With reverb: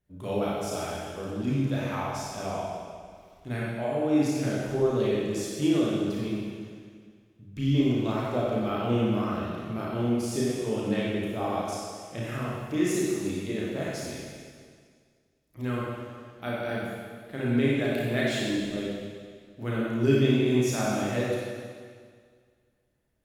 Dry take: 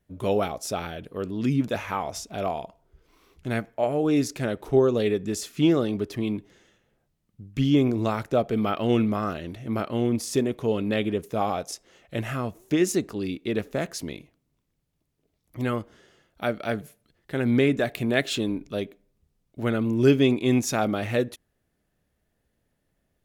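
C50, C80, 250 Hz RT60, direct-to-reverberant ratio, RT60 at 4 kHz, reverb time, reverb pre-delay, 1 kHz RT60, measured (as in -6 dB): -3.5 dB, -0.5 dB, 1.9 s, -6.0 dB, 1.9 s, 1.9 s, 30 ms, 1.9 s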